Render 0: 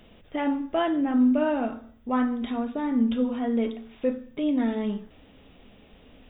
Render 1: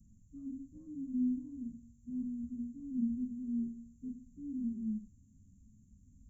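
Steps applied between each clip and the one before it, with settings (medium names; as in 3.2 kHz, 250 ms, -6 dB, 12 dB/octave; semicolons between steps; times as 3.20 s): frequency axis rescaled in octaves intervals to 76%; inverse Chebyshev band-stop 450–3000 Hz, stop band 50 dB; trim -1 dB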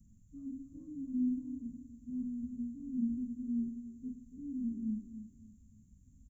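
feedback delay 281 ms, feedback 29%, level -11 dB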